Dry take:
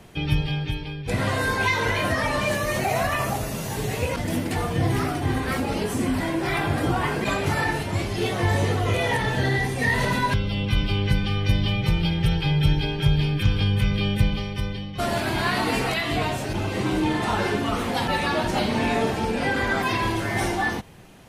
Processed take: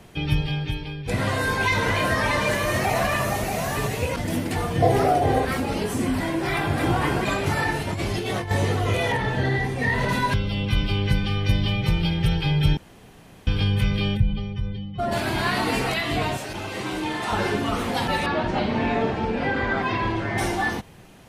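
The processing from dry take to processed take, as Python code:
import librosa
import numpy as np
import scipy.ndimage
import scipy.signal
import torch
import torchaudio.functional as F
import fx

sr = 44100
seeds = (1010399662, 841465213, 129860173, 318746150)

y = fx.echo_single(x, sr, ms=632, db=-5.0, at=(1.47, 3.87), fade=0.02)
y = fx.band_shelf(y, sr, hz=570.0, db=13.5, octaves=1.1, at=(4.82, 5.45))
y = fx.echo_throw(y, sr, start_s=6.55, length_s=0.46, ms=240, feedback_pct=15, wet_db=-4.5)
y = fx.over_compress(y, sr, threshold_db=-27.0, ratio=-1.0, at=(7.87, 8.51))
y = fx.high_shelf(y, sr, hz=4700.0, db=-11.0, at=(9.12, 10.09))
y = fx.spec_expand(y, sr, power=1.6, at=(14.16, 15.11), fade=0.02)
y = fx.low_shelf(y, sr, hz=390.0, db=-10.0, at=(16.37, 17.32))
y = fx.bessel_lowpass(y, sr, hz=2800.0, order=2, at=(18.26, 20.38))
y = fx.edit(y, sr, fx.room_tone_fill(start_s=12.77, length_s=0.7), tone=tone)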